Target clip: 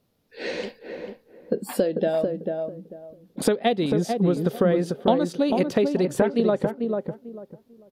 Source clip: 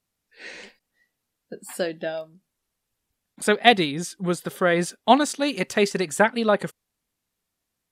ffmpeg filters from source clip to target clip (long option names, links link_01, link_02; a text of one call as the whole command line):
ffmpeg -i in.wav -filter_complex "[0:a]equalizer=frequency=125:width_type=o:width=1:gain=8,equalizer=frequency=250:width_type=o:width=1:gain=6,equalizer=frequency=500:width_type=o:width=1:gain=10,equalizer=frequency=2000:width_type=o:width=1:gain=-4,equalizer=frequency=4000:width_type=o:width=1:gain=3,equalizer=frequency=8000:width_type=o:width=1:gain=-10,acompressor=threshold=-26dB:ratio=10,asplit=2[link_01][link_02];[link_02]adelay=444,lowpass=frequency=1000:poles=1,volume=-3.5dB,asplit=2[link_03][link_04];[link_04]adelay=444,lowpass=frequency=1000:poles=1,volume=0.25,asplit=2[link_05][link_06];[link_06]adelay=444,lowpass=frequency=1000:poles=1,volume=0.25,asplit=2[link_07][link_08];[link_08]adelay=444,lowpass=frequency=1000:poles=1,volume=0.25[link_09];[link_03][link_05][link_07][link_09]amix=inputs=4:normalize=0[link_10];[link_01][link_10]amix=inputs=2:normalize=0,volume=7dB" out.wav